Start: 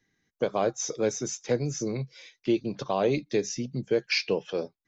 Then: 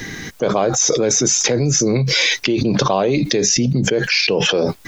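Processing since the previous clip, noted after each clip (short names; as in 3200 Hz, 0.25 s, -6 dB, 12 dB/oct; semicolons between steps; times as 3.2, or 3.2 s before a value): fast leveller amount 100%; gain +4.5 dB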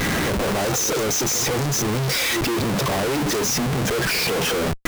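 dynamic EQ 3200 Hz, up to -5 dB, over -28 dBFS, Q 1.1; pre-echo 0.158 s -14.5 dB; Schmitt trigger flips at -32.5 dBFS; gain -4 dB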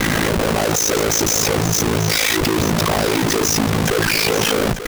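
ring modulator 27 Hz; on a send: echo 0.888 s -10.5 dB; on the sum: gain +7 dB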